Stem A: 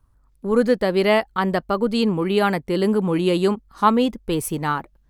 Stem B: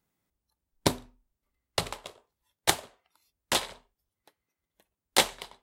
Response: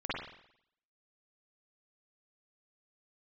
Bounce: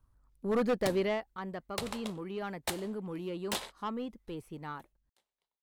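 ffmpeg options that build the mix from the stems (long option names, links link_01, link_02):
-filter_complex "[0:a]acrossover=split=3600[link_01][link_02];[link_02]acompressor=threshold=-44dB:ratio=4:attack=1:release=60[link_03];[link_01][link_03]amix=inputs=2:normalize=0,asoftclip=type=tanh:threshold=-10.5dB,volume=-8dB,afade=type=out:start_time=0.91:duration=0.32:silence=0.316228,asplit=2[link_04][link_05];[1:a]acompressor=threshold=-29dB:ratio=12,volume=-0.5dB[link_06];[link_05]apad=whole_len=248040[link_07];[link_06][link_07]sidechaingate=range=-43dB:threshold=-57dB:ratio=16:detection=peak[link_08];[link_04][link_08]amix=inputs=2:normalize=0,aeval=exprs='0.075*(abs(mod(val(0)/0.075+3,4)-2)-1)':channel_layout=same"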